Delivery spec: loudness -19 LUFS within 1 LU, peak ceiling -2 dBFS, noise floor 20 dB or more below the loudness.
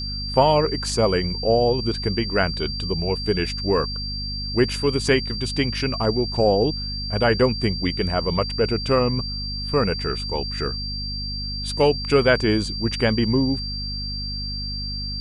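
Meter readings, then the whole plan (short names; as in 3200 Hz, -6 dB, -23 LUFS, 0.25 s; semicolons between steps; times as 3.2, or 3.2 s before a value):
hum 50 Hz; harmonics up to 250 Hz; hum level -28 dBFS; steady tone 4700 Hz; tone level -29 dBFS; loudness -22.5 LUFS; peak -3.5 dBFS; loudness target -19.0 LUFS
-> notches 50/100/150/200/250 Hz; notch 4700 Hz, Q 30; gain +3.5 dB; limiter -2 dBFS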